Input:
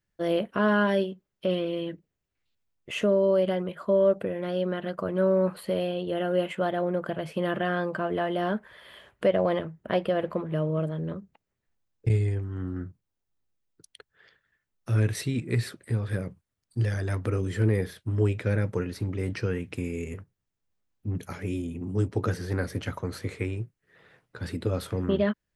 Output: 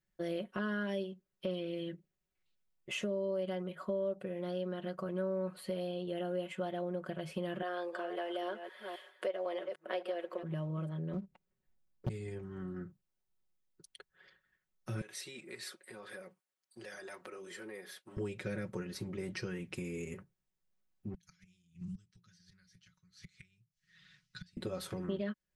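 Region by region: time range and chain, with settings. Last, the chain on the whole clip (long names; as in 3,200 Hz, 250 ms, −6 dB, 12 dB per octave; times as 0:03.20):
0:07.62–0:10.43: delay that plays each chunk backwards 267 ms, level −11 dB + high-pass filter 350 Hz 24 dB per octave
0:11.13–0:12.09: low-shelf EQ 490 Hz +6.5 dB + leveller curve on the samples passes 1 + highs frequency-modulated by the lows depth 0.94 ms
0:15.01–0:18.17: high-pass filter 500 Hz + downward compressor 2.5 to 1, threshold −42 dBFS
0:21.14–0:24.57: gate with flip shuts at −26 dBFS, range −27 dB + drawn EQ curve 180 Hz 0 dB, 270 Hz −21 dB, 710 Hz −27 dB, 1,000 Hz −15 dB, 1,500 Hz −3 dB, 2,400 Hz +1 dB, 3,800 Hz +9 dB, 5,900 Hz +12 dB, 11,000 Hz −6 dB
whole clip: comb filter 5.4 ms, depth 73%; dynamic equaliser 6,200 Hz, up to +6 dB, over −50 dBFS, Q 0.7; downward compressor 2.5 to 1, threshold −32 dBFS; level −6 dB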